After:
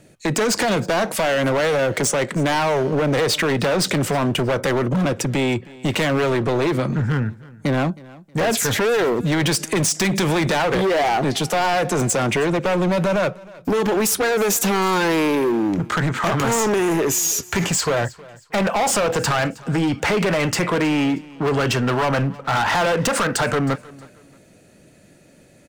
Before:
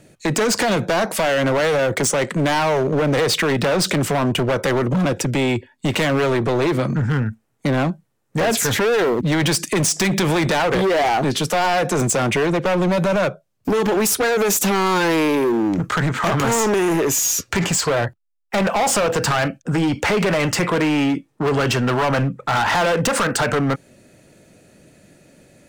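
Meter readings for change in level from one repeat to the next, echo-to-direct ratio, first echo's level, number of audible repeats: -10.0 dB, -21.0 dB, -21.5 dB, 2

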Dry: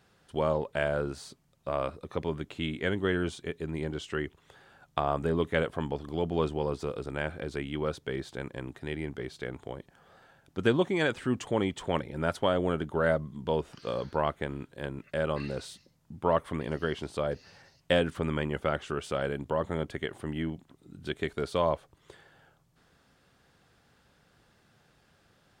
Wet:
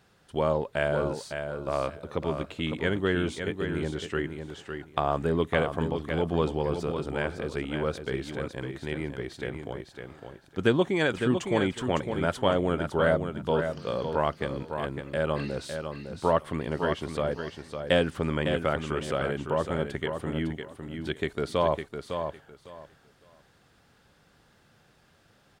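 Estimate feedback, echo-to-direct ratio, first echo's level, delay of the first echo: 20%, -7.0 dB, -7.0 dB, 0.556 s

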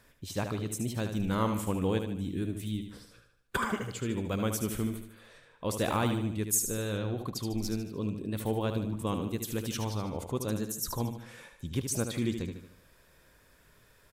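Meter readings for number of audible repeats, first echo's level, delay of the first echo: 5, -7.5 dB, 75 ms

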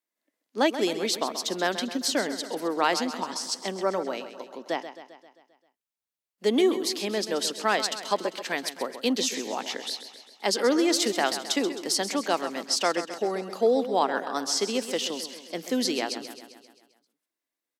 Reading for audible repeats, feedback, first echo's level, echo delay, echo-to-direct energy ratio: 5, 58%, -11.5 dB, 0.132 s, -9.5 dB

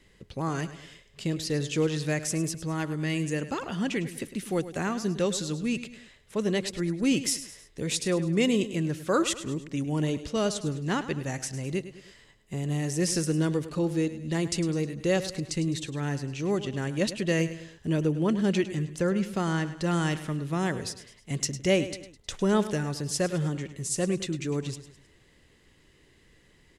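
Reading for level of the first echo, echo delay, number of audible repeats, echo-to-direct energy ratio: -13.5 dB, 0.104 s, 3, -12.5 dB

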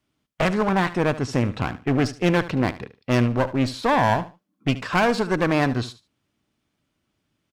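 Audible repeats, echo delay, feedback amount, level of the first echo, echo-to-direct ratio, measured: 2, 74 ms, 21%, -15.5 dB, -15.5 dB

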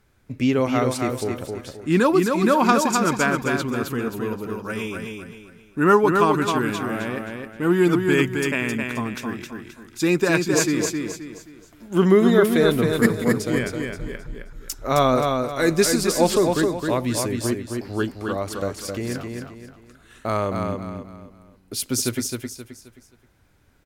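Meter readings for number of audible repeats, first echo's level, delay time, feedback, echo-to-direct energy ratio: 4, -4.5 dB, 0.264 s, 35%, -4.0 dB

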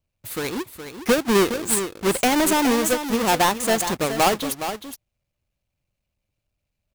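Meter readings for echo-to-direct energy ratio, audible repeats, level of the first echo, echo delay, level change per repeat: -9.5 dB, 1, -9.5 dB, 0.417 s, no steady repeat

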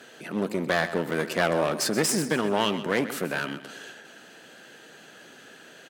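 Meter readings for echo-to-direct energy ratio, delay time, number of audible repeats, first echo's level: -12.5 dB, 0.13 s, 3, -13.0 dB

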